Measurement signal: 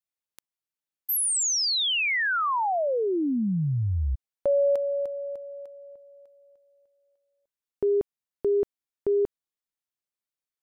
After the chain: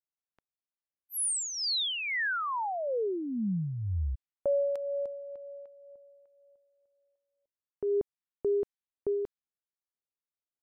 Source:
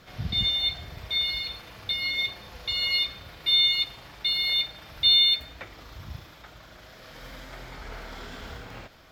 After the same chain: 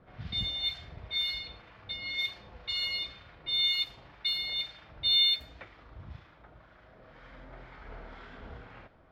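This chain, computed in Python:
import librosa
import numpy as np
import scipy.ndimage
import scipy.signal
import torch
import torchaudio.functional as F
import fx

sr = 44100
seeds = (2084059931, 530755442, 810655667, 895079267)

y = fx.harmonic_tremolo(x, sr, hz=2.0, depth_pct=50, crossover_hz=990.0)
y = fx.env_lowpass(y, sr, base_hz=1500.0, full_db=-23.5)
y = y * 10.0 ** (-4.0 / 20.0)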